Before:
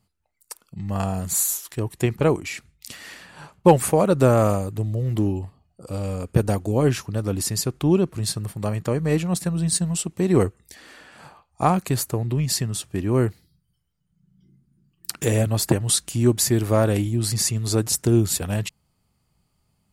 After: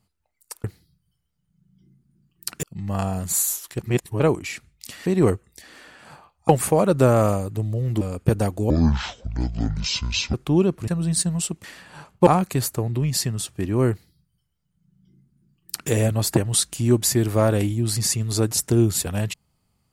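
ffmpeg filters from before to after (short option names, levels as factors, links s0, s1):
-filter_complex "[0:a]asplit=13[s0][s1][s2][s3][s4][s5][s6][s7][s8][s9][s10][s11][s12];[s0]atrim=end=0.642[s13];[s1]atrim=start=13.258:end=15.252[s14];[s2]atrim=start=0.638:end=1.802[s15];[s3]atrim=start=1.798:end=2.212,asetpts=PTS-STARTPTS,areverse[s16];[s4]atrim=start=2.208:end=3.072[s17];[s5]atrim=start=10.188:end=11.622[s18];[s6]atrim=start=3.698:end=5.222[s19];[s7]atrim=start=6.088:end=6.784[s20];[s8]atrim=start=6.78:end=7.68,asetpts=PTS-STARTPTS,asetrate=24255,aresample=44100[s21];[s9]atrim=start=7.676:end=8.222[s22];[s10]atrim=start=9.428:end=10.192[s23];[s11]atrim=start=3.068:end=3.702[s24];[s12]atrim=start=11.618[s25];[s13][s14]acrossfade=d=0.004:c1=hsin:c2=hsin[s26];[s26][s15]acrossfade=d=0.004:c1=hsin:c2=hsin[s27];[s27][s16]acrossfade=d=0.004:c1=hsin:c2=hsin[s28];[s28][s17]acrossfade=d=0.004:c1=hsin:c2=hsin[s29];[s29][s18]acrossfade=d=0.004:c1=hsin:c2=hsin[s30];[s30][s19]acrossfade=d=0.004:c1=hsin:c2=hsin[s31];[s31][s20]acrossfade=d=0.004:c1=hsin:c2=hsin[s32];[s32][s21]acrossfade=d=0.004:c1=hsin:c2=hsin[s33];[s33][s22]acrossfade=d=0.004:c1=hsin:c2=hsin[s34];[s34][s23]acrossfade=d=0.004:c1=hsin:c2=hsin[s35];[s35][s24]acrossfade=d=0.004:c1=hsin:c2=hsin[s36];[s36][s25]acrossfade=d=0.004:c1=hsin:c2=hsin"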